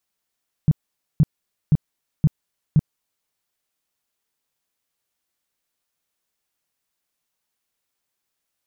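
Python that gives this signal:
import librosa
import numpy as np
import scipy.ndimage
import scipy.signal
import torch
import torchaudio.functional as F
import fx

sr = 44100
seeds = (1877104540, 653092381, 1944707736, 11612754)

y = fx.tone_burst(sr, hz=152.0, cycles=5, every_s=0.52, bursts=5, level_db=-10.0)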